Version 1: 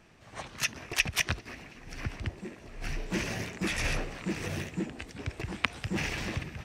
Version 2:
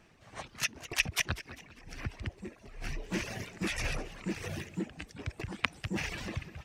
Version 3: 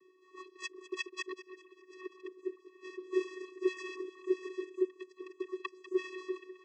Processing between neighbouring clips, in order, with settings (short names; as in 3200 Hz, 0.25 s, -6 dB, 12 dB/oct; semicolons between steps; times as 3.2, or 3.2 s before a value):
reverb removal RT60 1 s; warbling echo 0.199 s, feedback 42%, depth 176 cents, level -16 dB; gain -2 dB
vocoder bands 16, square 371 Hz